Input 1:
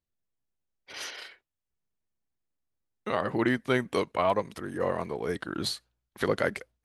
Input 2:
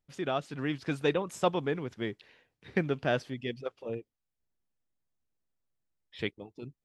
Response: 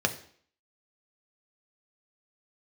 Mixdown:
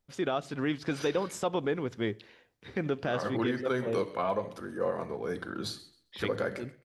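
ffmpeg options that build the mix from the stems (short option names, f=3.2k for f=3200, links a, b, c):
-filter_complex "[0:a]volume=-12dB,asplit=3[a][b][c];[b]volume=-4dB[d];[c]volume=-12dB[e];[1:a]volume=3dB,asplit=2[f][g];[g]volume=-23dB[h];[2:a]atrim=start_sample=2205[i];[d][h]amix=inputs=2:normalize=0[j];[j][i]afir=irnorm=-1:irlink=0[k];[e]aecho=0:1:132|264|396|528:1|0.23|0.0529|0.0122[l];[a][f][k][l]amix=inputs=4:normalize=0,alimiter=limit=-19.5dB:level=0:latency=1:release=88"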